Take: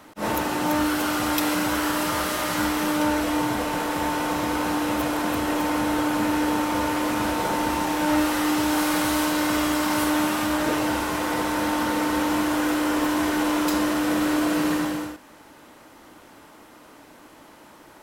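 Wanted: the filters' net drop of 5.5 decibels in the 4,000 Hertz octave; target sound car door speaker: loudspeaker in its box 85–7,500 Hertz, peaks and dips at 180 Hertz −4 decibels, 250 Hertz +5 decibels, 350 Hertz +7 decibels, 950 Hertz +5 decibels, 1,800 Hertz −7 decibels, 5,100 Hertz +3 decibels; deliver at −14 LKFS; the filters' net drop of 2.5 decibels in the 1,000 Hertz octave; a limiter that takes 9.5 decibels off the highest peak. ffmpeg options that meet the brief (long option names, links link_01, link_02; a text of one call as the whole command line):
ffmpeg -i in.wav -af "equalizer=frequency=1000:width_type=o:gain=-6,equalizer=frequency=4000:width_type=o:gain=-8,alimiter=limit=-18dB:level=0:latency=1,highpass=85,equalizer=frequency=180:width_type=q:width=4:gain=-4,equalizer=frequency=250:width_type=q:width=4:gain=5,equalizer=frequency=350:width_type=q:width=4:gain=7,equalizer=frequency=950:width_type=q:width=4:gain=5,equalizer=frequency=1800:width_type=q:width=4:gain=-7,equalizer=frequency=5100:width_type=q:width=4:gain=3,lowpass=frequency=7500:width=0.5412,lowpass=frequency=7500:width=1.3066,volume=10dB" out.wav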